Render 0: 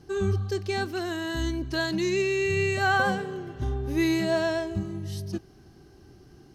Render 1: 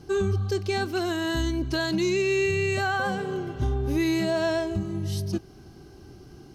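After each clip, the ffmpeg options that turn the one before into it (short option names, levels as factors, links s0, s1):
-af "bandreject=f=1800:w=8.1,alimiter=limit=0.0794:level=0:latency=1:release=239,volume=1.78"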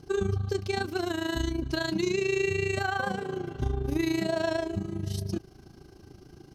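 -af "tremolo=f=27:d=0.75"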